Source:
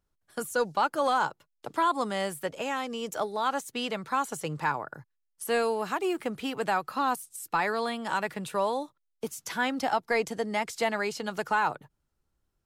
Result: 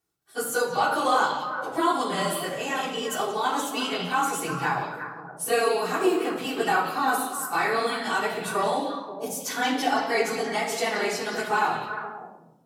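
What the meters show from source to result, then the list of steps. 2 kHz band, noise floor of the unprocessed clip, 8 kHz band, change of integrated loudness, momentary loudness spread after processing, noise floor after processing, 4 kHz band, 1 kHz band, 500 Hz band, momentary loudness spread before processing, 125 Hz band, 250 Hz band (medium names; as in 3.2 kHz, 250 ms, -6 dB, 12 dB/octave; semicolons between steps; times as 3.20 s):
+5.0 dB, -78 dBFS, +7.5 dB, +4.0 dB, 8 LU, -49 dBFS, +6.5 dB, +4.0 dB, +3.5 dB, 9 LU, +3.5 dB, +4.0 dB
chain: phase randomisation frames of 50 ms; high-pass 160 Hz 12 dB/octave; treble shelf 4.6 kHz +7 dB; repeats whose band climbs or falls 177 ms, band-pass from 3.7 kHz, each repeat -1.4 oct, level -4 dB; simulated room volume 3000 m³, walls furnished, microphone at 3.5 m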